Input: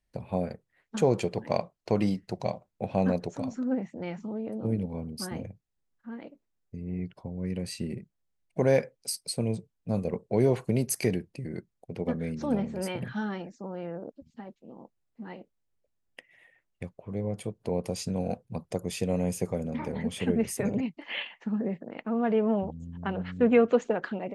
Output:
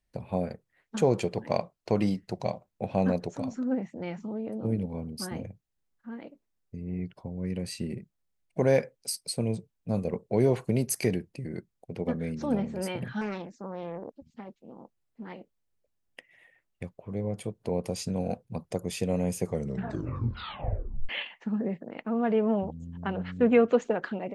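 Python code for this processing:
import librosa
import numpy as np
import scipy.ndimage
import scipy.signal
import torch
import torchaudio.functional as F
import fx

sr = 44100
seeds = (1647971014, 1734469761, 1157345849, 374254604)

y = fx.doppler_dist(x, sr, depth_ms=0.46, at=(13.21, 15.34))
y = fx.edit(y, sr, fx.tape_stop(start_s=19.46, length_s=1.63), tone=tone)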